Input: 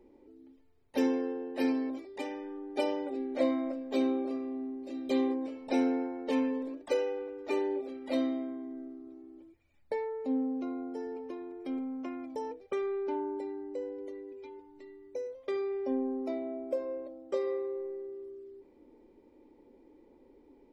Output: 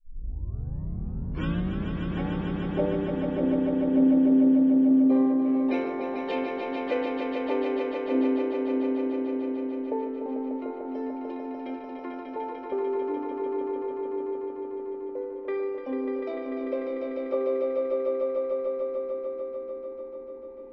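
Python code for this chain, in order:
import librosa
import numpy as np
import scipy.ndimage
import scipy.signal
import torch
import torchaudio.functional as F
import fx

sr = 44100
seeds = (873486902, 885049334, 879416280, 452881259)

y = fx.tape_start_head(x, sr, length_s=2.35)
y = fx.filter_lfo_lowpass(y, sr, shape='sine', hz=0.2, low_hz=250.0, high_hz=3400.0, q=1.7)
y = fx.echo_swell(y, sr, ms=148, loudest=5, wet_db=-5.5)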